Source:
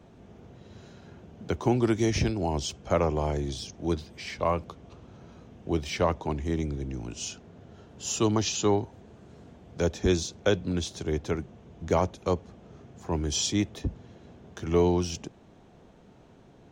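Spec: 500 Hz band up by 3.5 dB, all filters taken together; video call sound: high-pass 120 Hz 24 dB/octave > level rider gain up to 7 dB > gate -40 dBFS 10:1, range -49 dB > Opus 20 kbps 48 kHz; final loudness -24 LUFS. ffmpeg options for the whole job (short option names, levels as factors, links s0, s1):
-af "highpass=f=120:w=0.5412,highpass=f=120:w=1.3066,equalizer=f=500:t=o:g=4.5,dynaudnorm=m=2.24,agate=range=0.00355:threshold=0.01:ratio=10,volume=1.33" -ar 48000 -c:a libopus -b:a 20k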